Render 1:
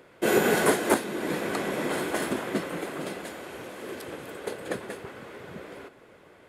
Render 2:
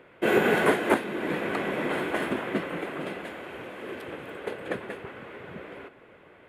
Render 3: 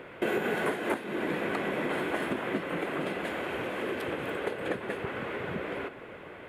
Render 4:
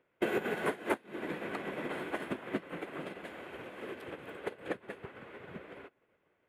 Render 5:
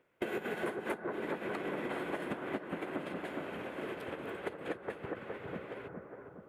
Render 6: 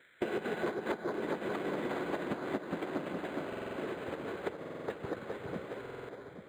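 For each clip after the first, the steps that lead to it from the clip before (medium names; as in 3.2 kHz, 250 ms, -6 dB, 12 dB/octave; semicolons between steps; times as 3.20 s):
resonant high shelf 3.8 kHz -10.5 dB, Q 1.5
compression 4:1, threshold -38 dBFS, peak gain reduction 18 dB; trim +8 dB
upward expansion 2.5:1, over -46 dBFS
bucket-brigade echo 413 ms, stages 4096, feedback 52%, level -4 dB; compression 4:1, threshold -36 dBFS, peak gain reduction 10 dB; trim +2 dB
band noise 1.4–2.4 kHz -63 dBFS; buffer glitch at 3.48/4.59/5.81 s, samples 2048, times 5; decimation joined by straight lines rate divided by 8×; trim +2.5 dB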